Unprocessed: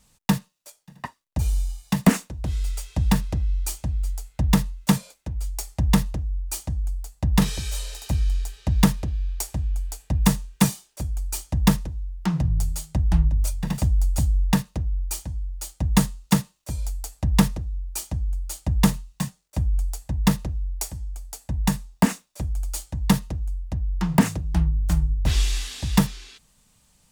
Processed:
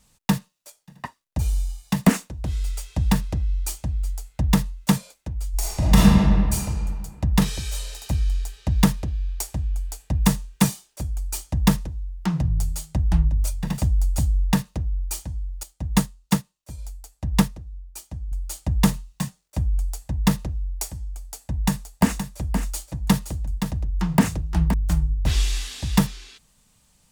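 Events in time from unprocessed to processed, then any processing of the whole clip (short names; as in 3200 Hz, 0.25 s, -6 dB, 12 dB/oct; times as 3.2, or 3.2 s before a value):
5.51–6.53 reverb throw, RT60 2 s, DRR -7 dB
15.63–18.32 upward expander, over -36 dBFS
21.16–24.74 echo 0.521 s -8 dB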